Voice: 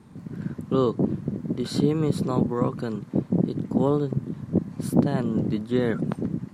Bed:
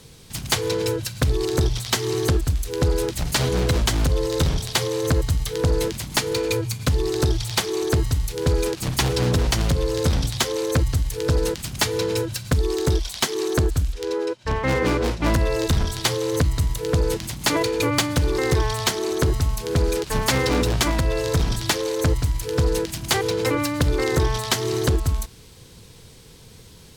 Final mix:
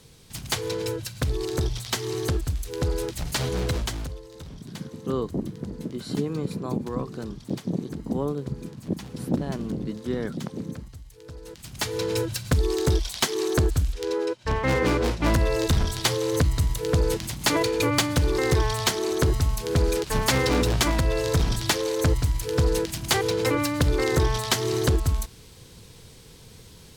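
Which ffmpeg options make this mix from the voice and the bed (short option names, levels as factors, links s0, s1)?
-filter_complex "[0:a]adelay=4350,volume=0.531[s0];[1:a]volume=5.31,afade=t=out:st=3.69:d=0.53:silence=0.158489,afade=t=in:st=11.44:d=0.8:silence=0.1[s1];[s0][s1]amix=inputs=2:normalize=0"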